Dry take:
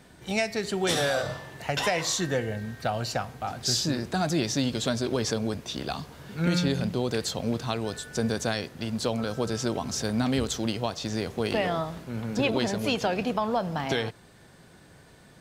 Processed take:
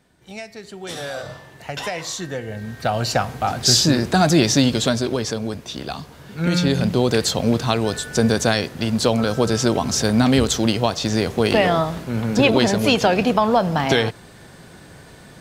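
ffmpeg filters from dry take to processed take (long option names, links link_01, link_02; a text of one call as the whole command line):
ffmpeg -i in.wav -af "volume=18dB,afade=type=in:start_time=0.81:duration=0.55:silence=0.473151,afade=type=in:start_time=2.42:duration=0.9:silence=0.251189,afade=type=out:start_time=4.55:duration=0.71:silence=0.398107,afade=type=in:start_time=6.35:duration=0.65:silence=0.446684" out.wav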